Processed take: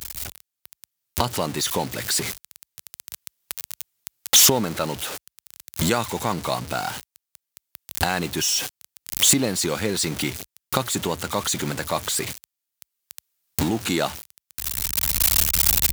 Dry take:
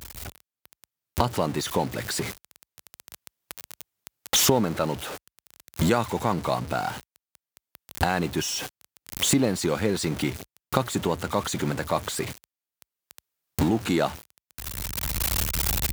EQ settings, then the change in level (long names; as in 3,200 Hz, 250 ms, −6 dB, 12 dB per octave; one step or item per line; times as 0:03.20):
high-shelf EQ 2,300 Hz +10 dB
−1.0 dB